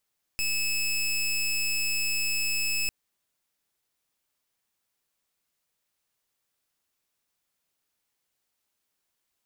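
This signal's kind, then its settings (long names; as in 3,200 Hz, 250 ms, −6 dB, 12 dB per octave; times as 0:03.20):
pulse wave 2,600 Hz, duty 19% −27 dBFS 2.50 s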